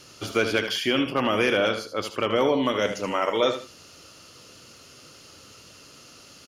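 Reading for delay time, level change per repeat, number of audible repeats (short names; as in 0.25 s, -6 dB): 77 ms, -12.0 dB, 2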